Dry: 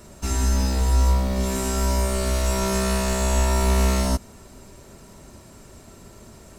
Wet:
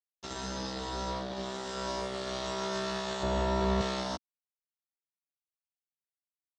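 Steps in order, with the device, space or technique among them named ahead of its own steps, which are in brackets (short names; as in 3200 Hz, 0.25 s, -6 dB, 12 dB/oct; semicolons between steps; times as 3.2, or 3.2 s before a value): 3.23–3.81 tilt -2.5 dB/oct; blown loudspeaker (crossover distortion -28 dBFS; speaker cabinet 190–5500 Hz, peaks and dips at 250 Hz -10 dB, 2400 Hz -7 dB, 3500 Hz +7 dB); gain -4.5 dB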